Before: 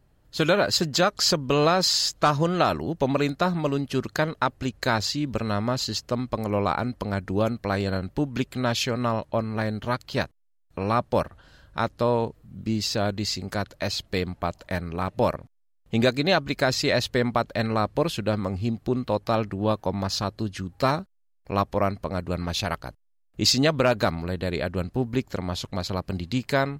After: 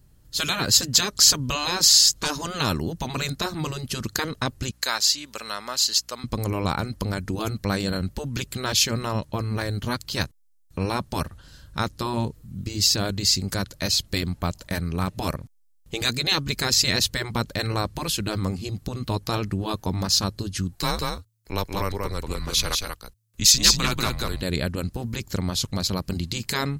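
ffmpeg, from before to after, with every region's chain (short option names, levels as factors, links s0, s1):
-filter_complex "[0:a]asettb=1/sr,asplit=3[s0][s1][s2];[s0]atrim=end=4.714[s3];[s1]atrim=start=4.71:end=6.24,asetpts=PTS-STARTPTS,afade=t=in:d=0.004:c=qsin,afade=t=out:st=1.526:d=0.004:c=qsin,highpass=770,aeval=exprs='val(0)+0.000631*(sin(2*PI*60*n/s)+sin(2*PI*2*60*n/s)/2+sin(2*PI*3*60*n/s)/3+sin(2*PI*4*60*n/s)/4+sin(2*PI*5*60*n/s)/5)':c=same[s4];[s2]atrim=start=6.236[s5];[s3][s4]acrossfade=d=0.004:c1=hsin:c2=qsin[s6];[s6][s5]acrossfade=d=0.004:c1=qsin:c2=hsin,asettb=1/sr,asplit=3[s7][s8][s9];[s7]atrim=end=20.754[s10];[s8]atrim=start=20.75:end=24.42,asetpts=PTS-STARTPTS,afade=t=in:d=0.004:c=qsin,afade=t=out:st=3.666:d=0.004:c=qsin,lowshelf=f=480:g=-8,afreqshift=-110,aecho=1:1:187:0.631,atrim=end_sample=161847[s11];[s9]atrim=start=24.416[s12];[s10][s11]acrossfade=d=0.004:c1=hsin:c2=qsin[s13];[s13][s12]acrossfade=d=0.004:c1=qsin:c2=hsin,equalizer=f=690:t=o:w=0.58:g=-5,afftfilt=real='re*lt(hypot(re,im),0.316)':imag='im*lt(hypot(re,im),0.316)':win_size=1024:overlap=0.75,bass=f=250:g=7,treble=f=4000:g=13"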